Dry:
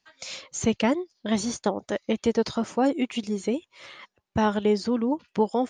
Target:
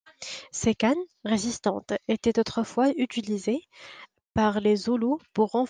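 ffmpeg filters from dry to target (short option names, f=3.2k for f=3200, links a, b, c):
-af "agate=range=-33dB:threshold=-54dB:ratio=3:detection=peak"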